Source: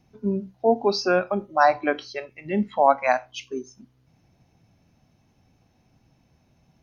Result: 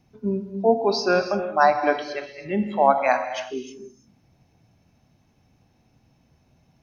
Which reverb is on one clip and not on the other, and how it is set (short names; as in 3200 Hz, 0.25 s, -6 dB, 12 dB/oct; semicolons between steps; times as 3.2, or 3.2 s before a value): non-linear reverb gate 0.35 s flat, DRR 7 dB